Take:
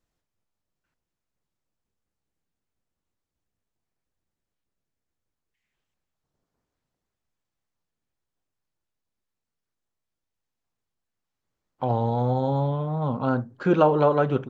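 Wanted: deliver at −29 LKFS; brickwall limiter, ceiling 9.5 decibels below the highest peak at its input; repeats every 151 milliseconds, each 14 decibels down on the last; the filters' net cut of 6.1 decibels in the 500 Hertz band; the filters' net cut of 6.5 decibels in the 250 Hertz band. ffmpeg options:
ffmpeg -i in.wav -af "equalizer=frequency=250:width_type=o:gain=-8,equalizer=frequency=500:width_type=o:gain=-5.5,alimiter=limit=-19dB:level=0:latency=1,aecho=1:1:151|302:0.2|0.0399,volume=0.5dB" out.wav

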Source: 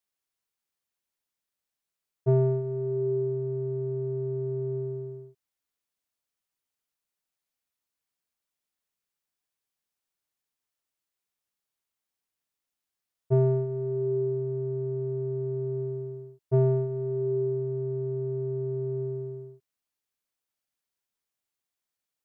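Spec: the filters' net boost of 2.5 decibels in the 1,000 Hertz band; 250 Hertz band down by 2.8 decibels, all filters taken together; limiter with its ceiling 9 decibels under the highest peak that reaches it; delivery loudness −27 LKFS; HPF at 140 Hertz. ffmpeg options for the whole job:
ffmpeg -i in.wav -af "highpass=140,equalizer=frequency=250:width_type=o:gain=-6.5,equalizer=frequency=1000:width_type=o:gain=4,volume=7.5dB,alimiter=limit=-18.5dB:level=0:latency=1" out.wav

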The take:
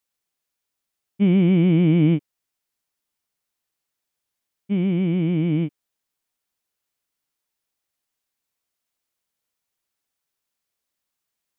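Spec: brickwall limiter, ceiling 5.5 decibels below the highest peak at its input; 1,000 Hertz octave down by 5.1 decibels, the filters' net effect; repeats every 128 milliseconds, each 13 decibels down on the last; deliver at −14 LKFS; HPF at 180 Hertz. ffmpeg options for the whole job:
ffmpeg -i in.wav -af "highpass=180,equalizer=frequency=1000:width_type=o:gain=-7.5,alimiter=limit=-17dB:level=0:latency=1,aecho=1:1:128|256|384:0.224|0.0493|0.0108,volume=11dB" out.wav

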